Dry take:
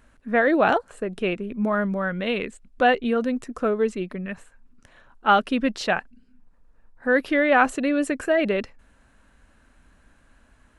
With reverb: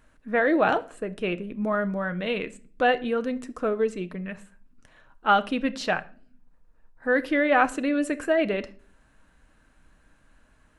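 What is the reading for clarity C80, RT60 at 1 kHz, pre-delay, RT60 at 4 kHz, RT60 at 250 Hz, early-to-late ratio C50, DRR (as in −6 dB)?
24.0 dB, 0.40 s, 6 ms, 0.35 s, 0.65 s, 19.0 dB, 10.5 dB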